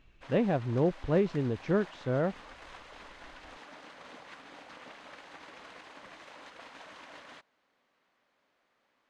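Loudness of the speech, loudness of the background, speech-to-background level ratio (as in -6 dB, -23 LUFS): -30.0 LUFS, -49.5 LUFS, 19.5 dB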